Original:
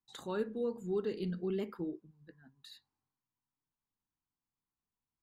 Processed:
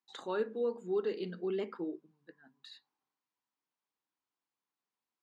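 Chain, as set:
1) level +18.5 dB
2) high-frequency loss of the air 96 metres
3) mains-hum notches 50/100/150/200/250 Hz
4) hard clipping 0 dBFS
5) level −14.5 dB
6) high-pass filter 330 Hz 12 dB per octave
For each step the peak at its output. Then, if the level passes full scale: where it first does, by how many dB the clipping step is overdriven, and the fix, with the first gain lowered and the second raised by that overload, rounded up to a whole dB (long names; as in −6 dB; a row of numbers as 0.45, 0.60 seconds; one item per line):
−5.5, −5.5, −5.5, −5.5, −20.0, −23.0 dBFS
no step passes full scale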